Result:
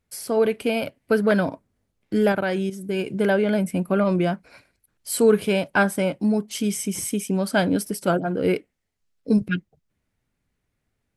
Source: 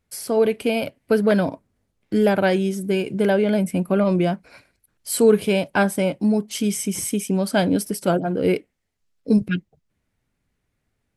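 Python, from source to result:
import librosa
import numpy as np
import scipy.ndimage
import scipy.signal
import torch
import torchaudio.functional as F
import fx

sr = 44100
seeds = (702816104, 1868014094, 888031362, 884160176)

y = fx.level_steps(x, sr, step_db=11, at=(2.32, 2.99))
y = fx.dynamic_eq(y, sr, hz=1400.0, q=1.8, threshold_db=-38.0, ratio=4.0, max_db=5)
y = F.gain(torch.from_numpy(y), -2.0).numpy()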